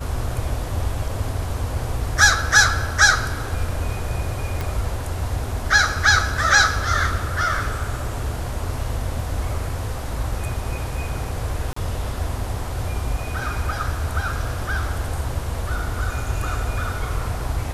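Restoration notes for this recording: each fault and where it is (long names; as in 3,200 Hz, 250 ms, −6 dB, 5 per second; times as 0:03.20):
0:04.61: click
0:11.73–0:11.76: drop-out 34 ms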